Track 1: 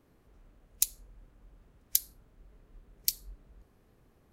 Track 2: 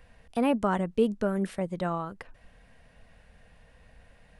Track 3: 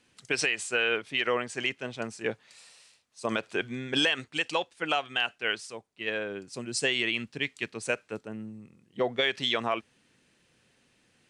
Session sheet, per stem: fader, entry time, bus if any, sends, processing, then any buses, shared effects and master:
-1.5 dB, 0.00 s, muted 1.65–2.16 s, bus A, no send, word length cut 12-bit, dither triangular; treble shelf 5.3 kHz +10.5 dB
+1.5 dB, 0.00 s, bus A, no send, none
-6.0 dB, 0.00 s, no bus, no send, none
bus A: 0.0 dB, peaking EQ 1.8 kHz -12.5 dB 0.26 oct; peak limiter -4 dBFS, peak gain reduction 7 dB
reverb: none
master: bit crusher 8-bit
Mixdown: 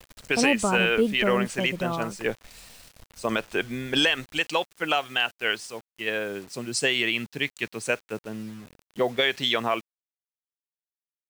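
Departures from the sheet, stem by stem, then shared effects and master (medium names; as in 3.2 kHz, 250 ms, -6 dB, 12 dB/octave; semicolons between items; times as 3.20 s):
stem 1: muted; stem 3 -6.0 dB -> +3.5 dB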